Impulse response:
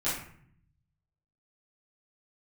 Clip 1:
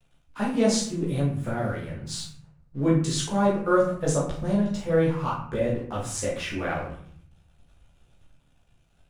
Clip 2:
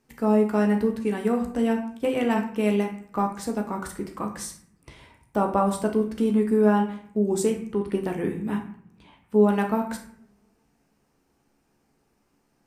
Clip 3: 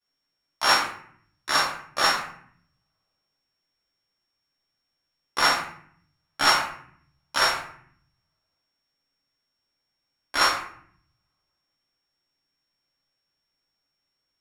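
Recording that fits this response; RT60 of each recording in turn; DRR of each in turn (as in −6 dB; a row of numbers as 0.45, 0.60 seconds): 3; 0.60, 0.60, 0.60 seconds; −7.0, 2.5, −14.0 decibels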